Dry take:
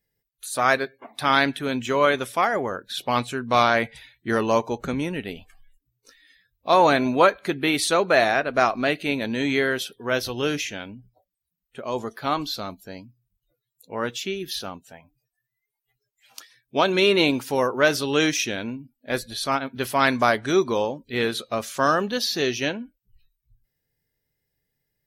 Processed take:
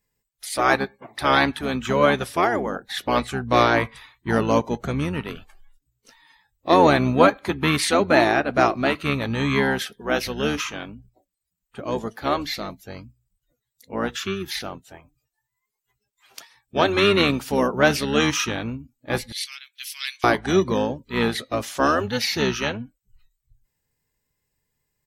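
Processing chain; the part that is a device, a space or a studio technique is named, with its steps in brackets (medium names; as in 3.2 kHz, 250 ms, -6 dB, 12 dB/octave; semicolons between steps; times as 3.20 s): octave pedal (harmony voices -12 st -4 dB); 19.32–20.24 s: inverse Chebyshev high-pass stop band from 430 Hz, stop band 80 dB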